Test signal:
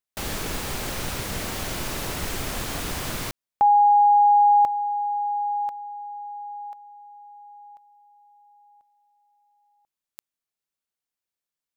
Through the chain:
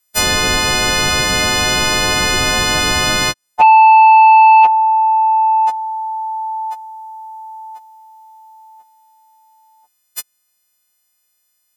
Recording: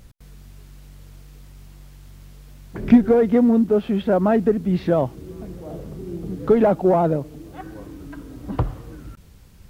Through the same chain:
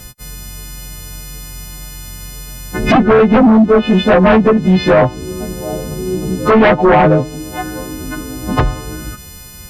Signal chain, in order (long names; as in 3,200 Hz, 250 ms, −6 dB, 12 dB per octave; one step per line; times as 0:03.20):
every partial snapped to a pitch grid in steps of 3 semitones
treble cut that deepens with the level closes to 2,400 Hz, closed at −14.5 dBFS
sine wavefolder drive 11 dB, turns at −3 dBFS
level −1.5 dB